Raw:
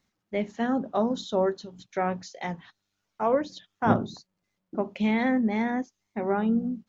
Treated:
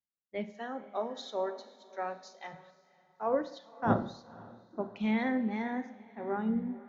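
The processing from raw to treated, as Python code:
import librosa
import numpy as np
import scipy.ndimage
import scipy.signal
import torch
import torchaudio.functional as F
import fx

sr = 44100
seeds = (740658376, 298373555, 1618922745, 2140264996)

y = scipy.signal.sosfilt(scipy.signal.butter(2, 5600.0, 'lowpass', fs=sr, output='sos'), x)
y = fx.noise_reduce_blind(y, sr, reduce_db=8)
y = fx.highpass(y, sr, hz=410.0, slope=12, at=(0.51, 2.52), fade=0.02)
y = fx.echo_diffused(y, sr, ms=536, feedback_pct=42, wet_db=-15)
y = fx.rev_schroeder(y, sr, rt60_s=0.86, comb_ms=33, drr_db=12.0)
y = fx.band_widen(y, sr, depth_pct=40)
y = y * librosa.db_to_amplitude(-7.0)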